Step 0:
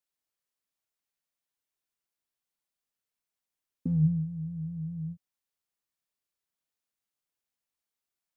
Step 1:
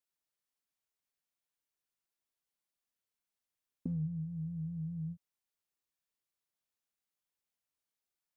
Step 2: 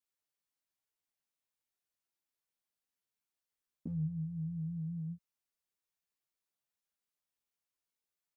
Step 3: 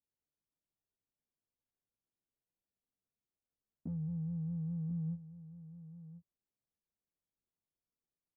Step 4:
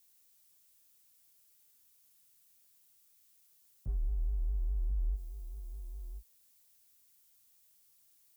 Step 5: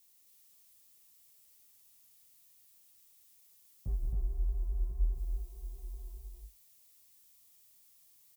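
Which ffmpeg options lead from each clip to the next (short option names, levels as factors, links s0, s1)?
-af "acompressor=threshold=0.0282:ratio=6,volume=0.708"
-filter_complex "[0:a]asplit=2[s0][s1];[s1]adelay=11.3,afreqshift=0.3[s2];[s0][s2]amix=inputs=2:normalize=1,volume=1.12"
-af "alimiter=level_in=6.68:limit=0.0631:level=0:latency=1:release=19,volume=0.15,adynamicsmooth=sensitivity=8:basefreq=500,aecho=1:1:1037:0.211,volume=2.11"
-filter_complex "[0:a]acrossover=split=170[s0][s1];[s1]alimiter=level_in=16.8:limit=0.0631:level=0:latency=1,volume=0.0596[s2];[s0][s2]amix=inputs=2:normalize=0,crystalizer=i=7.5:c=0,afreqshift=-120,volume=2.66"
-filter_complex "[0:a]flanger=delay=9.9:depth=2.5:regen=-67:speed=1.4:shape=triangular,asuperstop=centerf=1500:order=4:qfactor=6,asplit=2[s0][s1];[s1]aecho=0:1:174.9|268.2:0.282|0.708[s2];[s0][s2]amix=inputs=2:normalize=0,volume=2"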